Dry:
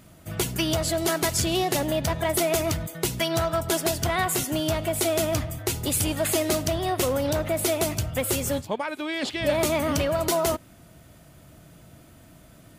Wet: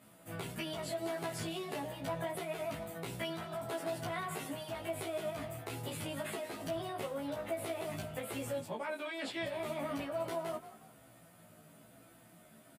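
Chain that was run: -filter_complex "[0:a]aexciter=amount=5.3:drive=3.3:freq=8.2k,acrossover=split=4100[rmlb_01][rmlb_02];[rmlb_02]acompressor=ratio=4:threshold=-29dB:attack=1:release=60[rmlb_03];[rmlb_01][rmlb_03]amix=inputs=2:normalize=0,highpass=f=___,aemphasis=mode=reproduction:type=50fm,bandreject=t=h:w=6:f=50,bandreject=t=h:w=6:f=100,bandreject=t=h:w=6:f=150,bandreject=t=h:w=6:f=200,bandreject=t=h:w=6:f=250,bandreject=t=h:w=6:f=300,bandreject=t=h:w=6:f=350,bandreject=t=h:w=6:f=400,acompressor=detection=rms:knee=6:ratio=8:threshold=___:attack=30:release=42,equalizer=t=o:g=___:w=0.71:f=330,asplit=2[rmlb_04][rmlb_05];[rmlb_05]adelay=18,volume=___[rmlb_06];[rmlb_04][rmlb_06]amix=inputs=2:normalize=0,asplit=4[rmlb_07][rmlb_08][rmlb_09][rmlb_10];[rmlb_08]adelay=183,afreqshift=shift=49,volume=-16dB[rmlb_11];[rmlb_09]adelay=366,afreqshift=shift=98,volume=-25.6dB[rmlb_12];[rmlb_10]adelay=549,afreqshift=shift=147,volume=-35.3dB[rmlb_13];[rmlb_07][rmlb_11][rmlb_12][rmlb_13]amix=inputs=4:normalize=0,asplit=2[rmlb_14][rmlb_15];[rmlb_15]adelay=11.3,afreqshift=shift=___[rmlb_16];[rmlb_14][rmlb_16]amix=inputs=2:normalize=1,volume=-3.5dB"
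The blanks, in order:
170, -33dB, -4, -4dB, -1.1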